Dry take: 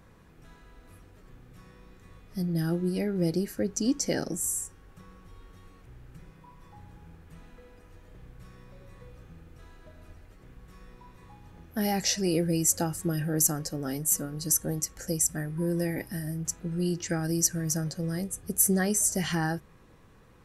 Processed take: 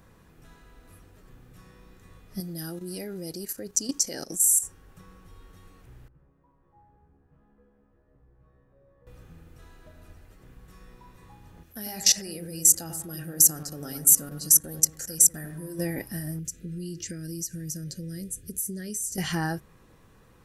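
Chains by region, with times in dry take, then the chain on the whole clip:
0:02.40–0:04.63: bass and treble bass −6 dB, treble +9 dB + output level in coarse steps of 12 dB
0:06.08–0:09.07: low-pass filter 1,100 Hz + tuned comb filter 69 Hz, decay 0.36 s, mix 100%
0:11.63–0:15.79: high-shelf EQ 2,700 Hz +10 dB + output level in coarse steps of 19 dB + bucket-brigade delay 96 ms, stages 1,024, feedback 42%, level −6 dB
0:16.39–0:19.18: parametric band 1,100 Hz −4 dB 2.2 octaves + downward compressor 5 to 1, threshold −32 dBFS + Butterworth band-reject 920 Hz, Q 0.82
whole clip: high-shelf EQ 7,500 Hz +6.5 dB; notch filter 2,200 Hz, Q 27

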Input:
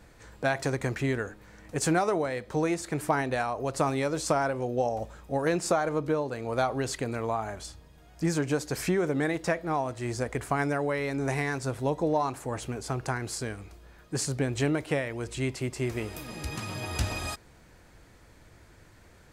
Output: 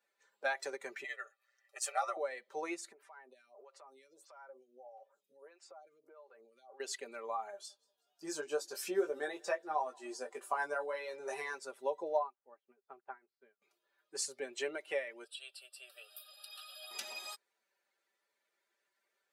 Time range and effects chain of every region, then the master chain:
0:01.04–0:02.17: high-pass filter 690 Hz + comb filter 1.6 ms, depth 89% + ring modulation 60 Hz
0:02.92–0:06.80: downward compressor 16 to 1, threshold −34 dBFS + phaser with staggered stages 1.6 Hz
0:07.51–0:11.54: parametric band 2,100 Hz −8.5 dB 0.35 octaves + double-tracking delay 20 ms −4.5 dB + repeating echo 185 ms, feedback 57%, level −19 dB
0:12.19–0:13.62: high-frequency loss of the air 360 metres + expander for the loud parts 2.5 to 1, over −40 dBFS
0:15.24–0:16.91: high-pass filter 570 Hz 24 dB per octave + parametric band 7,900 Hz +8.5 dB 1.5 octaves + phaser with its sweep stopped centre 1,400 Hz, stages 8
whole clip: spectral dynamics exaggerated over time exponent 1.5; high-pass filter 410 Hz 24 dB per octave; comb filter 5.1 ms, depth 65%; level −5 dB

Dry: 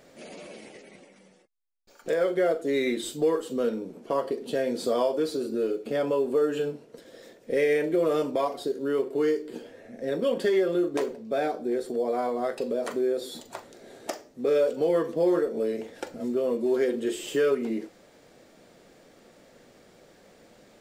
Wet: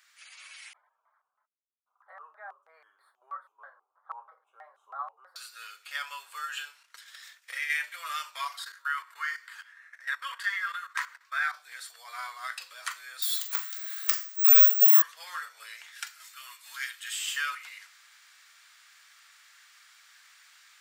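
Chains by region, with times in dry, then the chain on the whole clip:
0:00.73–0:05.36: inverse Chebyshev low-pass filter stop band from 2,100 Hz + pitch modulation by a square or saw wave square 3.1 Hz, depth 250 cents
0:06.83–0:07.70: downward expander −51 dBFS + downward compressor 2 to 1, threshold −31 dBFS + transient designer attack +10 dB, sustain +2 dB
0:08.59–0:11.54: flat-topped bell 1,400 Hz +10.5 dB 1.3 octaves + output level in coarse steps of 14 dB
0:13.22–0:15.02: mu-law and A-law mismatch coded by mu + high-shelf EQ 9,400 Hz +5 dB + bad sample-rate conversion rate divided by 2×, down none, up zero stuff
0:15.92–0:17.13: high-pass filter 1,200 Hz + high-shelf EQ 9,200 Hz +6.5 dB
whole clip: Butterworth high-pass 1,200 Hz 36 dB per octave; automatic gain control gain up to 7 dB; level −1.5 dB

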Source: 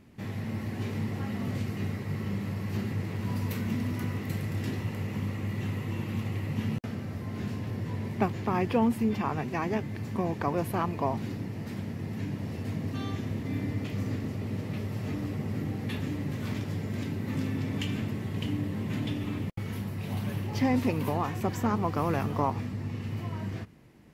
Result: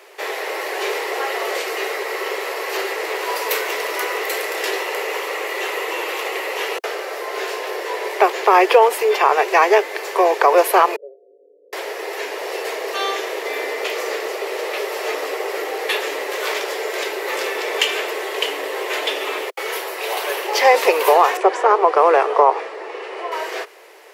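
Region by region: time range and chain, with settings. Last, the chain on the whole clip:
0:10.96–0:11.73: Chebyshev low-pass with heavy ripple 580 Hz, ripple 6 dB + notch filter 350 Hz, Q 6.7 + tuned comb filter 100 Hz, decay 1.7 s, harmonics odd, mix 90%
0:21.37–0:23.32: low-pass filter 1,400 Hz 6 dB per octave + bad sample-rate conversion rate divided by 2×, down none, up filtered
whole clip: Butterworth high-pass 390 Hz 72 dB per octave; boost into a limiter +21 dB; level −1 dB

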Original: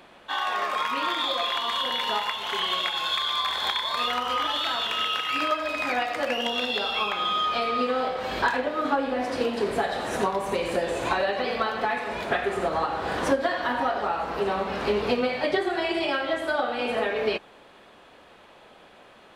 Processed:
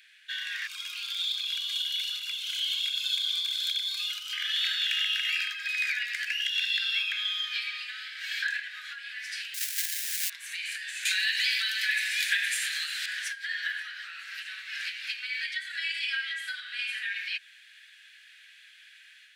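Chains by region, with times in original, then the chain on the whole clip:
0:00.67–0:04.33: phase shifter 1.3 Hz, delay 3.5 ms, feedback 37% + phaser with its sweep stopped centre 760 Hz, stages 4
0:09.54–0:10.30: each half-wave held at its own peak + first-order pre-emphasis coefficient 0.8
0:11.05–0:13.06: high-pass filter 1,200 Hz + spectral tilt +4.5 dB per octave + single-tap delay 345 ms −14.5 dB
whole clip: downward compressor 3 to 1, threshold −27 dBFS; Chebyshev high-pass filter 1,600 Hz, order 6; automatic gain control gain up to 4.5 dB

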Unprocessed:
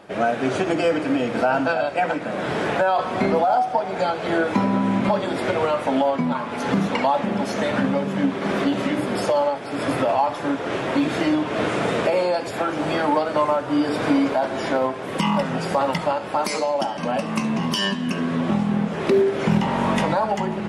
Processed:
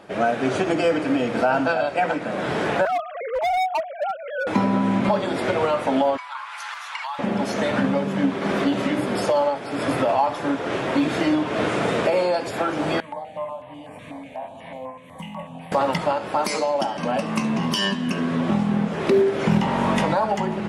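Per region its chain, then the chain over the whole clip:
0:02.85–0:04.47: three sine waves on the formant tracks + hard clipping −19.5 dBFS
0:06.17–0:07.19: Butterworth high-pass 970 Hz + downward compressor 1.5 to 1, threshold −32 dBFS
0:13.00–0:15.72: phaser with its sweep stopped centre 1,400 Hz, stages 6 + tuned comb filter 86 Hz, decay 0.63 s, mix 80% + notch on a step sequencer 8.1 Hz 790–6,800 Hz
whole clip: no processing

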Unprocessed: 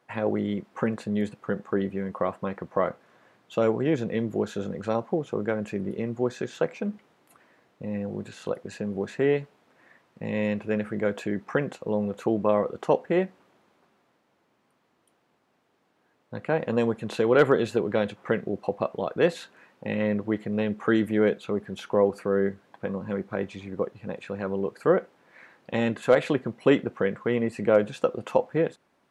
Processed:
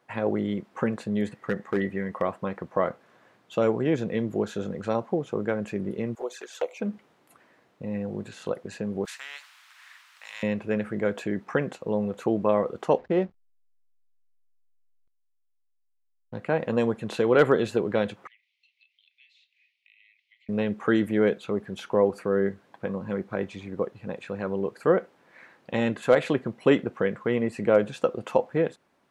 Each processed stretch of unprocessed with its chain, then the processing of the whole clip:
0:01.26–0:02.22: parametric band 1,900 Hz +14 dB 0.21 octaves + hard clipping −17.5 dBFS
0:06.15–0:06.80: high-pass filter 450 Hz 24 dB per octave + high-shelf EQ 7,100 Hz +11.5 dB + flanger swept by the level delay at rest 7.3 ms, full sweep at −27.5 dBFS
0:09.05–0:10.43: inverse Chebyshev high-pass filter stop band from 400 Hz, stop band 60 dB + every bin compressed towards the loudest bin 2 to 1
0:12.98–0:16.38: dynamic equaliser 1,900 Hz, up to −6 dB, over −50 dBFS, Q 1.2 + slack as between gear wheels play −44.5 dBFS + low-pass filter 4,900 Hz
0:18.27–0:20.49: Butterworth high-pass 2,100 Hz 96 dB per octave + downward compressor 4 to 1, threshold −54 dBFS + high-frequency loss of the air 240 metres
whole clip: no processing

